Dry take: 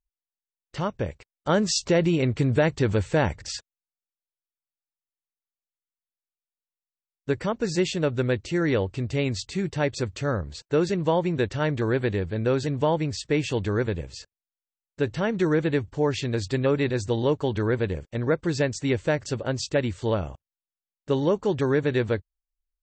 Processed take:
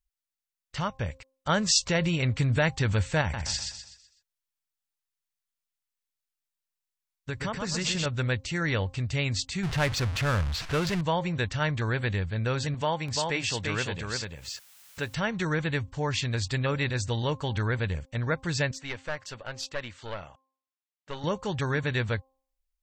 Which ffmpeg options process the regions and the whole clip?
ffmpeg -i in.wav -filter_complex "[0:a]asettb=1/sr,asplit=3[link_01][link_02][link_03];[link_01]atrim=end=3.214[link_04];[link_02]atrim=start=3.21:end=8.06,asetpts=PTS-STARTPTS,afade=type=in:duration=0.004:curve=qsin,afade=type=out:start_time=4.846:duration=0.004:curve=qsin,acompressor=threshold=-24dB:ratio=2.5:attack=3.2:release=140:knee=1:detection=peak,aecho=1:1:125|250|375|500|625:0.596|0.238|0.0953|0.0381|0.0152,atrim=end_sample=213885[link_05];[link_03]atrim=start=8.056[link_06];[link_04][link_05]acrossfade=duration=0.004:curve1=hsin:curve2=qsin[link_07];[link_07][link_06]acrossfade=duration=0.004:curve1=qsin:curve2=hsin,asettb=1/sr,asplit=3[link_08][link_09][link_10];[link_08]atrim=end=9.634[link_11];[link_09]atrim=start=9.63:end=11.01,asetpts=PTS-STARTPTS,afade=type=in:duration=0.004:curve=qsin,afade=type=out:start_time=1.376:duration=0.004:curve=qsin,aeval=exprs='val(0)+0.5*0.0447*sgn(val(0))':channel_layout=same,adynamicsmooth=sensitivity=4:basefreq=2200[link_12];[link_10]atrim=start=11.006[link_13];[link_11][link_12]acrossfade=duration=0.004:curve1=hsin:curve2=qsin[link_14];[link_14][link_13]acrossfade=duration=0.004:curve1=qsin:curve2=hsin,asettb=1/sr,asplit=3[link_15][link_16][link_17];[link_15]atrim=end=12.744[link_18];[link_16]atrim=start=12.74:end=15.15,asetpts=PTS-STARTPTS,afade=type=in:duration=0.004:curve=qsin,afade=type=out:start_time=2.406:duration=0.004:curve=qsin,highpass=frequency=230:poles=1,acompressor=mode=upward:threshold=-29dB:ratio=2.5:attack=3.2:release=140:knee=2.83:detection=peak,aecho=1:1:344:0.668,atrim=end_sample=106281[link_19];[link_17]atrim=start=15.146[link_20];[link_18][link_19]acrossfade=duration=0.004:curve1=hsin:curve2=qsin[link_21];[link_21][link_20]acrossfade=duration=0.004:curve1=qsin:curve2=hsin,asettb=1/sr,asplit=3[link_22][link_23][link_24];[link_22]atrim=end=18.714[link_25];[link_23]atrim=start=18.71:end=21.24,asetpts=PTS-STARTPTS,afade=type=in:duration=0.004:curve=qsin,afade=type=out:start_time=2.526:duration=0.004:curve=qsin,highpass=frequency=590:poles=1,aemphasis=mode=reproduction:type=50fm,aeval=exprs='(tanh(10*val(0)+0.45)-tanh(0.45))/10':channel_layout=same[link_26];[link_24]atrim=start=21.236[link_27];[link_25][link_26]acrossfade=duration=0.004:curve1=hsin:curve2=qsin[link_28];[link_28][link_27]acrossfade=duration=0.004:curve1=qsin:curve2=hsin,equalizer=frequency=360:width_type=o:width=1.7:gain=-14.5,bandreject=frequency=264.8:width_type=h:width=4,bandreject=frequency=529.6:width_type=h:width=4,bandreject=frequency=794.4:width_type=h:width=4,bandreject=frequency=1059.2:width_type=h:width=4,volume=3dB" out.wav

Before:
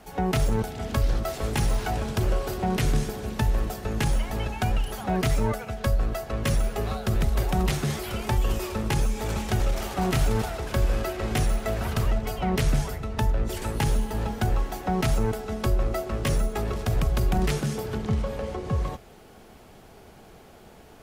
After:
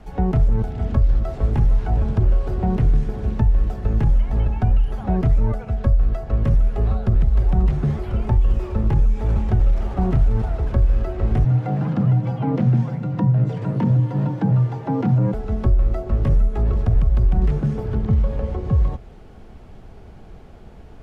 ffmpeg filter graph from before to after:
ffmpeg -i in.wav -filter_complex "[0:a]asettb=1/sr,asplit=3[link_01][link_02][link_03];[link_01]atrim=end=11.444[link_04];[link_02]atrim=start=11.44:end=15.34,asetpts=PTS-STARTPTS,afade=type=in:duration=0.004:curve=qsin,afade=type=out:start_time=3.896:duration=0.004:curve=qsin,acrossover=split=6700[link_05][link_06];[link_06]acompressor=threshold=-56dB:ratio=4:attack=1:release=60[link_07];[link_05][link_07]amix=inputs=2:normalize=0,afreqshift=84[link_08];[link_03]atrim=start=15.336[link_09];[link_04][link_08]acrossfade=duration=0.004:curve1=hsin:curve2=qsin[link_10];[link_10][link_09]acrossfade=duration=0.004:curve1=qsin:curve2=hsin,aemphasis=mode=reproduction:type=bsi,acrossover=split=1300|2600[link_11][link_12][link_13];[link_11]acompressor=threshold=-13dB:ratio=4[link_14];[link_12]acompressor=threshold=-51dB:ratio=4[link_15];[link_13]acompressor=threshold=-58dB:ratio=4[link_16];[link_14][link_15][link_16]amix=inputs=3:normalize=0" out.wav

